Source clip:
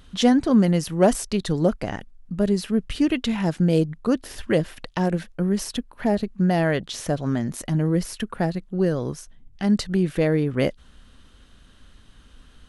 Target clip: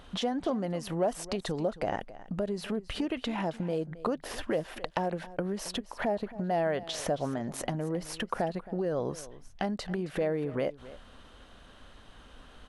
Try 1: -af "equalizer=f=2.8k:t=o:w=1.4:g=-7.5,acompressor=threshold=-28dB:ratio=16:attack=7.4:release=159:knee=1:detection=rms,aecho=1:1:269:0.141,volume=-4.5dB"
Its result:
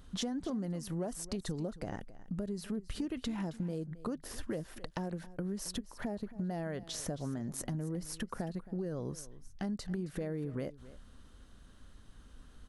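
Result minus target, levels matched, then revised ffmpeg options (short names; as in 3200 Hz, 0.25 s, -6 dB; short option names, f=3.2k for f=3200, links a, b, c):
500 Hz band -4.5 dB; 2000 Hz band -3.5 dB
-af "equalizer=f=2.8k:t=o:w=1.4:g=3.5,acompressor=threshold=-28dB:ratio=16:attack=7.4:release=159:knee=1:detection=rms,equalizer=f=700:t=o:w=1.9:g=13.5,aecho=1:1:269:0.141,volume=-4.5dB"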